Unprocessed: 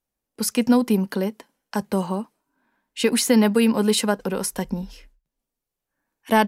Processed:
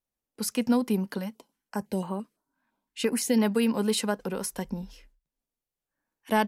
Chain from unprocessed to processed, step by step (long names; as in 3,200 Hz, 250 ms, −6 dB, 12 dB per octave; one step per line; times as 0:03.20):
pitch vibrato 3.9 Hz 29 cents
0:01.18–0:03.40: notch on a step sequencer 5.9 Hz 400–5,300 Hz
level −6.5 dB